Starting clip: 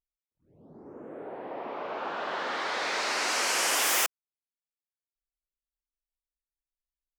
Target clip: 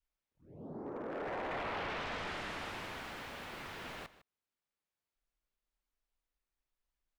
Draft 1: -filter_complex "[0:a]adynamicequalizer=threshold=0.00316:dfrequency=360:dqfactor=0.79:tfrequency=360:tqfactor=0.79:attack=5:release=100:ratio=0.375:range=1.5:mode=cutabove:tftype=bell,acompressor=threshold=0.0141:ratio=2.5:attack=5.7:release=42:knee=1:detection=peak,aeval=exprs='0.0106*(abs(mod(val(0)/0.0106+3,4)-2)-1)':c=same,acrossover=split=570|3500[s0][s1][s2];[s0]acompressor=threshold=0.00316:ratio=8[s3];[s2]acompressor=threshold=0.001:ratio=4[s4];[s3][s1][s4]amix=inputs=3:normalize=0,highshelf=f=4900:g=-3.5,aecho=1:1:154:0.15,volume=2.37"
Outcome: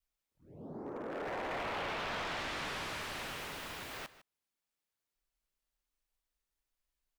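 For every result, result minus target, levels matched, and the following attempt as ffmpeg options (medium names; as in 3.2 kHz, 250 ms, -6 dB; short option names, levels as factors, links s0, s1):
8 kHz band +5.5 dB; compression: peak gain reduction +5 dB
-filter_complex "[0:a]adynamicequalizer=threshold=0.00316:dfrequency=360:dqfactor=0.79:tfrequency=360:tqfactor=0.79:attack=5:release=100:ratio=0.375:range=1.5:mode=cutabove:tftype=bell,acompressor=threshold=0.0141:ratio=2.5:attack=5.7:release=42:knee=1:detection=peak,aeval=exprs='0.0106*(abs(mod(val(0)/0.0106+3,4)-2)-1)':c=same,acrossover=split=570|3500[s0][s1][s2];[s0]acompressor=threshold=0.00316:ratio=8[s3];[s2]acompressor=threshold=0.001:ratio=4[s4];[s3][s1][s4]amix=inputs=3:normalize=0,highshelf=f=4900:g=-14.5,aecho=1:1:154:0.15,volume=2.37"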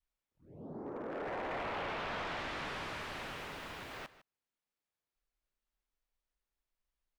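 compression: peak gain reduction +5 dB
-filter_complex "[0:a]adynamicequalizer=threshold=0.00316:dfrequency=360:dqfactor=0.79:tfrequency=360:tqfactor=0.79:attack=5:release=100:ratio=0.375:range=1.5:mode=cutabove:tftype=bell,acompressor=threshold=0.0376:ratio=2.5:attack=5.7:release=42:knee=1:detection=peak,aeval=exprs='0.0106*(abs(mod(val(0)/0.0106+3,4)-2)-1)':c=same,acrossover=split=570|3500[s0][s1][s2];[s0]acompressor=threshold=0.00316:ratio=8[s3];[s2]acompressor=threshold=0.001:ratio=4[s4];[s3][s1][s4]amix=inputs=3:normalize=0,highshelf=f=4900:g=-14.5,aecho=1:1:154:0.15,volume=2.37"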